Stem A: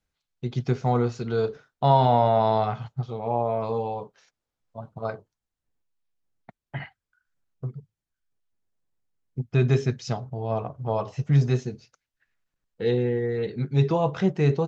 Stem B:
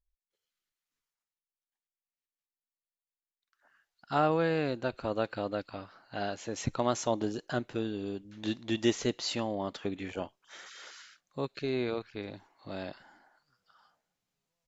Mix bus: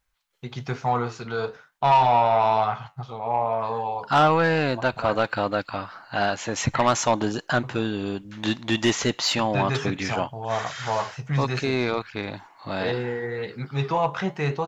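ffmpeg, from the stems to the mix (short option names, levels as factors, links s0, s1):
-filter_complex "[0:a]flanger=delay=8:depth=4.7:regen=-77:speed=1.1:shape=triangular,volume=0.891[s0];[1:a]equalizer=f=130:w=0.45:g=8,volume=1.41[s1];[s0][s1]amix=inputs=2:normalize=0,firequalizer=gain_entry='entry(380,0);entry(910,13);entry(4100,8)':delay=0.05:min_phase=1,asoftclip=type=tanh:threshold=0.266"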